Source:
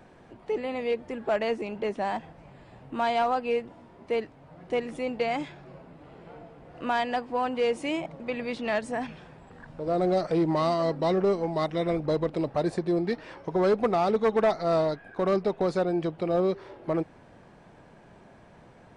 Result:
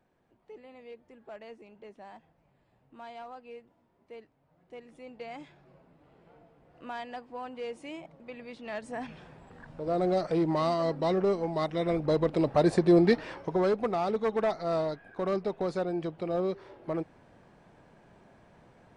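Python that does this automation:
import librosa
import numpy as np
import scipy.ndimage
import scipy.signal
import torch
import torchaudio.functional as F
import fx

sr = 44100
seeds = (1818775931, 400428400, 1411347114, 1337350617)

y = fx.gain(x, sr, db=fx.line((4.69, -19.0), (5.51, -12.0), (8.6, -12.0), (9.19, -2.5), (11.74, -2.5), (13.06, 6.5), (13.78, -5.0)))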